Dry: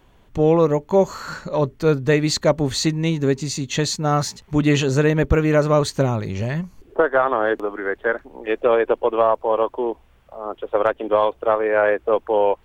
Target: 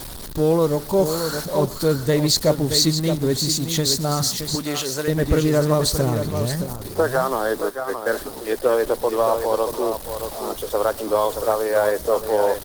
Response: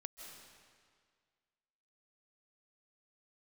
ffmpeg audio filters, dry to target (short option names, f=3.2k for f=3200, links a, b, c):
-filter_complex "[0:a]aeval=exprs='val(0)+0.5*0.0398*sgn(val(0))':c=same,equalizer=f=6.6k:w=2.6:g=-7.5,asplit=3[a][b][c];[a]afade=t=out:st=7.69:d=0.02[d];[b]agate=range=-23dB:threshold=-20dB:ratio=16:detection=peak,afade=t=in:st=7.69:d=0.02,afade=t=out:st=8.1:d=0.02[e];[c]afade=t=in:st=8.1:d=0.02[f];[d][e][f]amix=inputs=3:normalize=0,highshelf=f=2.7k:g=-9.5,aecho=1:1:622:0.398[g];[1:a]atrim=start_sample=2205,atrim=end_sample=6174[h];[g][h]afir=irnorm=-1:irlink=0,asplit=3[i][j][k];[i]afade=t=out:st=11.24:d=0.02[l];[j]aeval=exprs='val(0)*gte(abs(val(0)),0.00447)':c=same,afade=t=in:st=11.24:d=0.02,afade=t=out:st=12.21:d=0.02[m];[k]afade=t=in:st=12.21:d=0.02[n];[l][m][n]amix=inputs=3:normalize=0,aexciter=amount=6.9:drive=7.1:freq=3.8k,asettb=1/sr,asplit=3[o][p][q];[o]atrim=end=4.554[r];[p]atrim=start=4.55:end=5.08,asetpts=PTS-STARTPTS,afade=t=in:d=0.004:c=qsin,afade=t=out:st=0.526:d=0.004:c=qsin,highpass=f=710:p=1[s];[q]atrim=start=5.076[t];[r][s]acrossfade=d=0.004:c1=hsin:c2=qsin[u];[u][t]acrossfade=d=0.004:c1=qsin:c2=hsin,volume=4dB" -ar 48000 -c:a libopus -b:a 16k